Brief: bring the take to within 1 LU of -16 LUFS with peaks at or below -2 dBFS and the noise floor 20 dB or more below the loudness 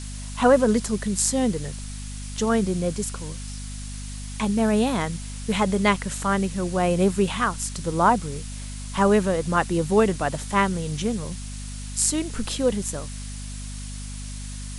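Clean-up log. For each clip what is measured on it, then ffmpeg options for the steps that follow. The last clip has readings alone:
hum 50 Hz; highest harmonic 250 Hz; hum level -32 dBFS; noise floor -34 dBFS; noise floor target -44 dBFS; loudness -23.5 LUFS; peak level -5.0 dBFS; loudness target -16.0 LUFS
-> -af "bandreject=f=50:t=h:w=4,bandreject=f=100:t=h:w=4,bandreject=f=150:t=h:w=4,bandreject=f=200:t=h:w=4,bandreject=f=250:t=h:w=4"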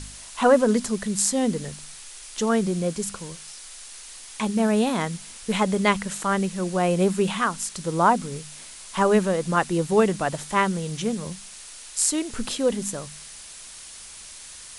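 hum not found; noise floor -42 dBFS; noise floor target -44 dBFS
-> -af "afftdn=nr=6:nf=-42"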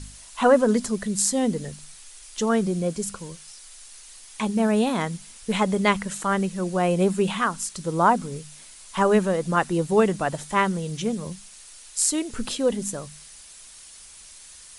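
noise floor -46 dBFS; loudness -23.5 LUFS; peak level -5.0 dBFS; loudness target -16.0 LUFS
-> -af "volume=2.37,alimiter=limit=0.794:level=0:latency=1"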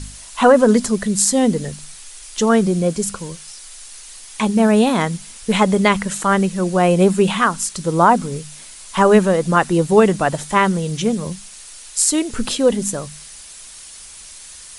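loudness -16.5 LUFS; peak level -2.0 dBFS; noise floor -39 dBFS

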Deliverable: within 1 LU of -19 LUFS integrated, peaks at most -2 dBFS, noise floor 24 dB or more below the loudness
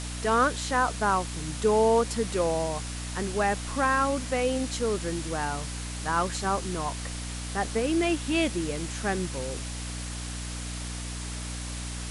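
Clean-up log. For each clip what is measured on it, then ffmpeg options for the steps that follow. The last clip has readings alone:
hum 60 Hz; highest harmonic 300 Hz; hum level -34 dBFS; noise floor -35 dBFS; noise floor target -53 dBFS; loudness -28.5 LUFS; peak level -12.0 dBFS; loudness target -19.0 LUFS
-> -af "bandreject=f=60:t=h:w=6,bandreject=f=120:t=h:w=6,bandreject=f=180:t=h:w=6,bandreject=f=240:t=h:w=6,bandreject=f=300:t=h:w=6"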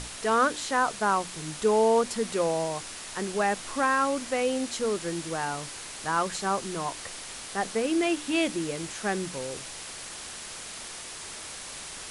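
hum not found; noise floor -41 dBFS; noise floor target -53 dBFS
-> -af "afftdn=nr=12:nf=-41"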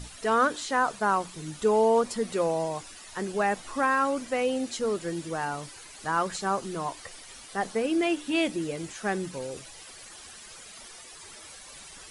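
noise floor -47 dBFS; noise floor target -52 dBFS
-> -af "afftdn=nr=6:nf=-47"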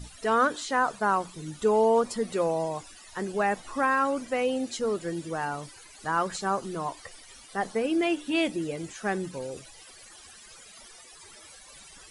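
noise floor -50 dBFS; noise floor target -52 dBFS
-> -af "afftdn=nr=6:nf=-50"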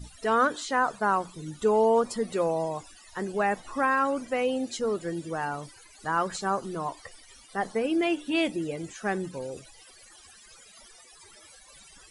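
noise floor -53 dBFS; loudness -28.0 LUFS; peak level -13.0 dBFS; loudness target -19.0 LUFS
-> -af "volume=2.82"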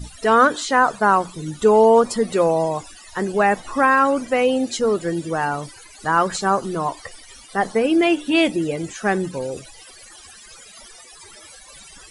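loudness -19.0 LUFS; peak level -4.0 dBFS; noise floor -44 dBFS

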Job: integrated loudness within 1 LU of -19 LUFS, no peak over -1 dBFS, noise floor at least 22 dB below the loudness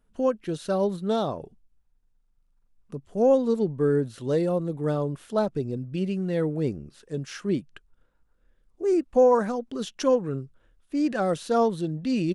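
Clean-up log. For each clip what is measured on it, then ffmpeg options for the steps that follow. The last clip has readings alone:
loudness -26.0 LUFS; peak level -10.5 dBFS; loudness target -19.0 LUFS
-> -af "volume=2.24"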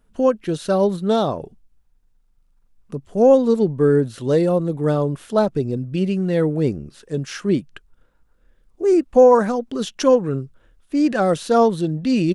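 loudness -19.0 LUFS; peak level -3.5 dBFS; noise floor -60 dBFS

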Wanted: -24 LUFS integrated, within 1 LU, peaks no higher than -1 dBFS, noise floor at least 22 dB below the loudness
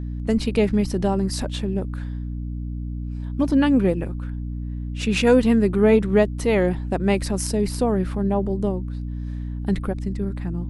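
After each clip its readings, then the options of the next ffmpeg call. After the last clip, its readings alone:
hum 60 Hz; highest harmonic 300 Hz; hum level -27 dBFS; loudness -22.5 LUFS; peak level -4.5 dBFS; loudness target -24.0 LUFS
-> -af "bandreject=f=60:t=h:w=4,bandreject=f=120:t=h:w=4,bandreject=f=180:t=h:w=4,bandreject=f=240:t=h:w=4,bandreject=f=300:t=h:w=4"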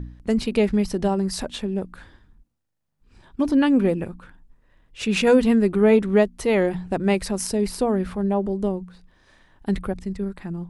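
hum not found; loudness -22.0 LUFS; peak level -5.0 dBFS; loudness target -24.0 LUFS
-> -af "volume=0.794"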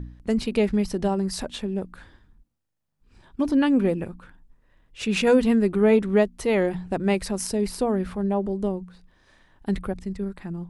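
loudness -24.0 LUFS; peak level -7.0 dBFS; noise floor -76 dBFS

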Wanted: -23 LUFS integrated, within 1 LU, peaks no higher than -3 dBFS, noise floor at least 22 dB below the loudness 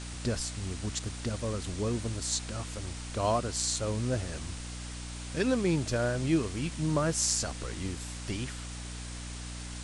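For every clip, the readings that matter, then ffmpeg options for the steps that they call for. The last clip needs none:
hum 60 Hz; highest harmonic 300 Hz; hum level -39 dBFS; noise floor -40 dBFS; noise floor target -55 dBFS; loudness -32.5 LUFS; peak level -11.0 dBFS; loudness target -23.0 LUFS
-> -af "bandreject=f=60:t=h:w=4,bandreject=f=120:t=h:w=4,bandreject=f=180:t=h:w=4,bandreject=f=240:t=h:w=4,bandreject=f=300:t=h:w=4"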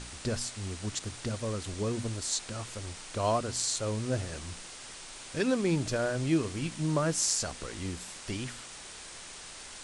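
hum not found; noise floor -46 dBFS; noise floor target -55 dBFS
-> -af "afftdn=nr=9:nf=-46"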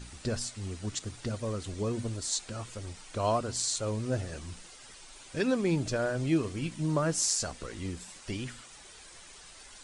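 noise floor -51 dBFS; noise floor target -55 dBFS
-> -af "afftdn=nr=6:nf=-51"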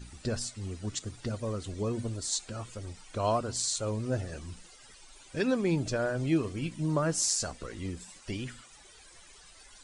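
noise floor -55 dBFS; loudness -32.5 LUFS; peak level -11.5 dBFS; loudness target -23.0 LUFS
-> -af "volume=2.99,alimiter=limit=0.708:level=0:latency=1"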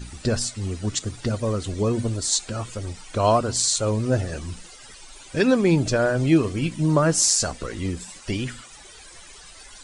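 loudness -23.0 LUFS; peak level -3.0 dBFS; noise floor -45 dBFS

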